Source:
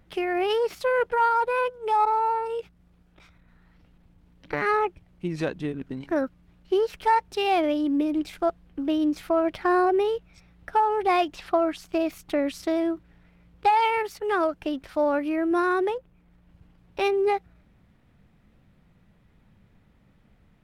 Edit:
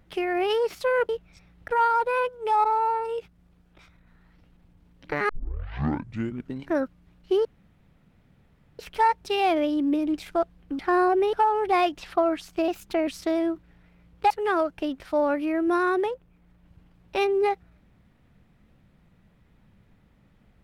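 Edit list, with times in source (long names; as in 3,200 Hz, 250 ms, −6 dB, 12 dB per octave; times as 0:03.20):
0:04.70: tape start 1.21 s
0:06.86: splice in room tone 1.34 s
0:08.86–0:09.56: remove
0:10.10–0:10.69: move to 0:01.09
0:12.04–0:12.48: play speed 112%
0:13.71–0:14.14: remove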